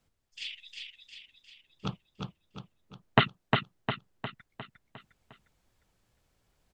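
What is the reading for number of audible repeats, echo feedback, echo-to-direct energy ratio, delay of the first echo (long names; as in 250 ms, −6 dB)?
6, 50%, −3.0 dB, 355 ms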